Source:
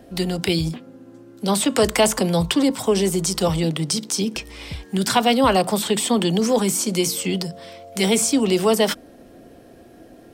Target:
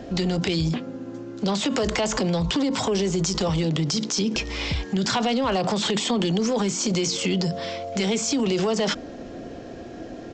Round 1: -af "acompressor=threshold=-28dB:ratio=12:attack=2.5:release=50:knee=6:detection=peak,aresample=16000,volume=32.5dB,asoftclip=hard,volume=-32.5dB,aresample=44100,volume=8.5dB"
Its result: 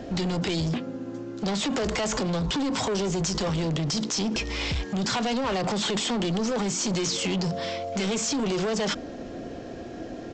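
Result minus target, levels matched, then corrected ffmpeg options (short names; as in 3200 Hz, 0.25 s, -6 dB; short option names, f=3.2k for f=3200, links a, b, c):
overloaded stage: distortion +12 dB
-af "acompressor=threshold=-28dB:ratio=12:attack=2.5:release=50:knee=6:detection=peak,aresample=16000,volume=25.5dB,asoftclip=hard,volume=-25.5dB,aresample=44100,volume=8.5dB"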